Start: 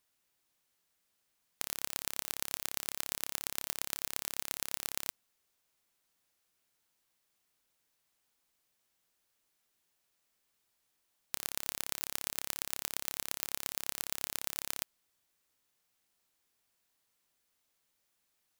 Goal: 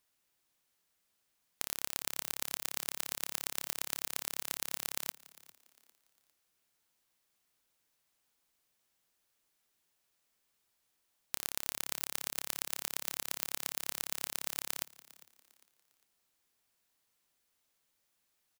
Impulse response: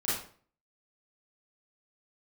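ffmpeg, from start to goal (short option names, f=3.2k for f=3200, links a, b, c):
-filter_complex "[0:a]asplit=4[a][b][c][d];[b]adelay=402,afreqshift=91,volume=-20.5dB[e];[c]adelay=804,afreqshift=182,volume=-29.6dB[f];[d]adelay=1206,afreqshift=273,volume=-38.7dB[g];[a][e][f][g]amix=inputs=4:normalize=0"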